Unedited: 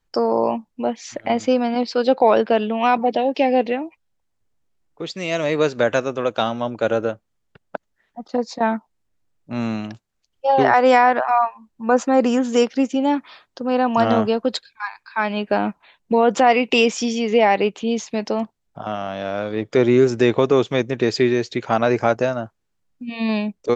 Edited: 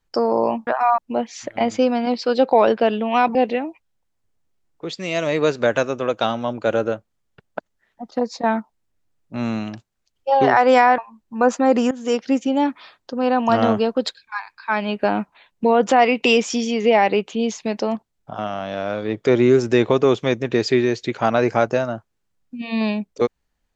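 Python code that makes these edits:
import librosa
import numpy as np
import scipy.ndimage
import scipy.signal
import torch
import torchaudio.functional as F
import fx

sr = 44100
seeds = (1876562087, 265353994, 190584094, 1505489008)

y = fx.edit(x, sr, fx.cut(start_s=3.04, length_s=0.48),
    fx.move(start_s=11.15, length_s=0.31, to_s=0.67),
    fx.fade_in_from(start_s=12.39, length_s=0.38, floor_db=-15.5), tone=tone)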